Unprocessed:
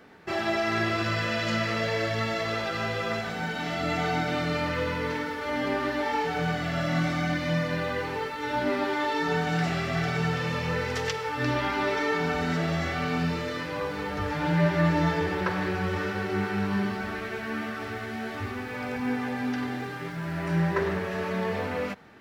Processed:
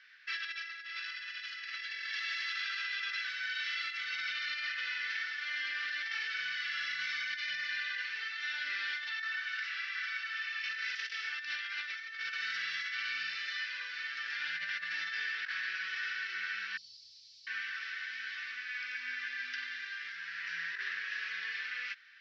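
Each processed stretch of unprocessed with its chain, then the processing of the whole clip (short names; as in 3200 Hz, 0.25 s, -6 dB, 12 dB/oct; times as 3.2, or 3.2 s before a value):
2.15–2.88 bell 180 Hz -9 dB 1.4 oct + overloaded stage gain 27 dB
9.09–10.64 HPF 840 Hz 24 dB/oct + tilt -3 dB/oct
16.77–17.47 Chebyshev band-stop 140–4400 Hz, order 4 + low shelf 140 Hz +8.5 dB
whole clip: elliptic band-pass 1600–5400 Hz, stop band 40 dB; negative-ratio compressor -37 dBFS, ratio -0.5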